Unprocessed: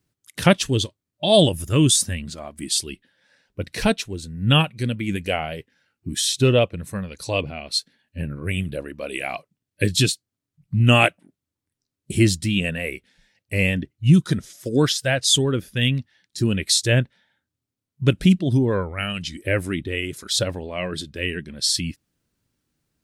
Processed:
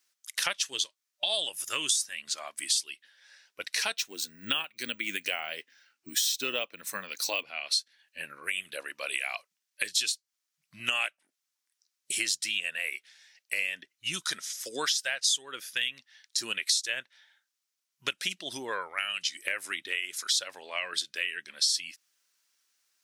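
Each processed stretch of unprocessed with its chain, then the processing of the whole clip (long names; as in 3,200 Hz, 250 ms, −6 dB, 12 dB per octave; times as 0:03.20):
0:03.97–0:07.43: parametric band 260 Hz +10.5 dB 1.2 octaves + bad sample-rate conversion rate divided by 2×, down filtered, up hold
whole clip: high-pass filter 1,300 Hz 12 dB per octave; downward compressor 5 to 1, threshold −33 dBFS; parametric band 5,800 Hz +5.5 dB 0.63 octaves; level +4.5 dB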